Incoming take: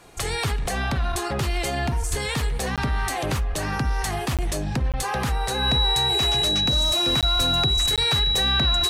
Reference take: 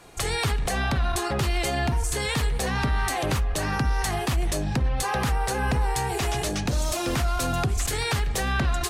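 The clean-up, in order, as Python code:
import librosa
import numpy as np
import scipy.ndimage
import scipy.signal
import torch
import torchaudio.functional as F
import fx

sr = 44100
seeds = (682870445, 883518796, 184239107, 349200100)

y = fx.notch(x, sr, hz=3900.0, q=30.0)
y = fx.fix_deplosive(y, sr, at_s=(2.1, 7.37))
y = fx.fix_interpolate(y, sr, at_s=(2.76, 4.37, 4.92, 7.21, 7.96), length_ms=17.0)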